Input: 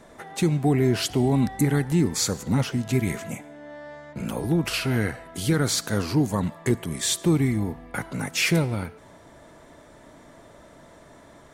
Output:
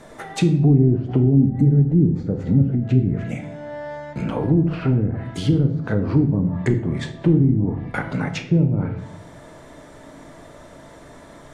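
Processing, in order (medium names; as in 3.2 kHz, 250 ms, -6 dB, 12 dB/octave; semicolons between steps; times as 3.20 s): low-pass that closes with the level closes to 320 Hz, closed at -19.5 dBFS; 1.20–3.43 s: peaking EQ 1 kHz -12.5 dB 0.57 oct; simulated room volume 140 m³, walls mixed, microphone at 0.45 m; trim +5 dB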